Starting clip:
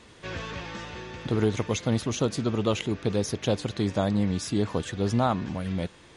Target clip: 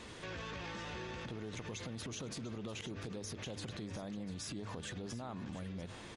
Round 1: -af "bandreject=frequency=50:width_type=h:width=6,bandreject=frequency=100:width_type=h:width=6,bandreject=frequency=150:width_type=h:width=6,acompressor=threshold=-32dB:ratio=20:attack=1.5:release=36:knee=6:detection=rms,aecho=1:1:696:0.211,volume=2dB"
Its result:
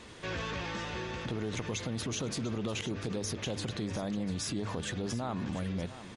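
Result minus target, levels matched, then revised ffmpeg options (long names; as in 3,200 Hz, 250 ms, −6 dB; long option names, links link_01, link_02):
downward compressor: peak gain reduction −9 dB
-af "bandreject=frequency=50:width_type=h:width=6,bandreject=frequency=100:width_type=h:width=6,bandreject=frequency=150:width_type=h:width=6,acompressor=threshold=-41.5dB:ratio=20:attack=1.5:release=36:knee=6:detection=rms,aecho=1:1:696:0.211,volume=2dB"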